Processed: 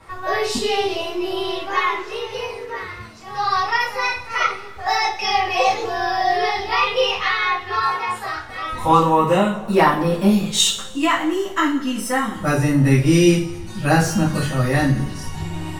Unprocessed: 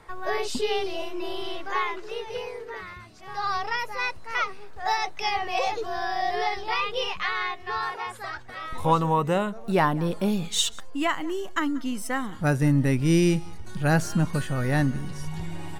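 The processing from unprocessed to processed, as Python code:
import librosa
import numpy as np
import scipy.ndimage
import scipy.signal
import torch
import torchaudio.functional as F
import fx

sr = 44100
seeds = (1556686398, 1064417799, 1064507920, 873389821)

y = fx.rev_double_slope(x, sr, seeds[0], early_s=0.38, late_s=1.8, knee_db=-22, drr_db=-9.0)
y = F.gain(torch.from_numpy(y), -1.5).numpy()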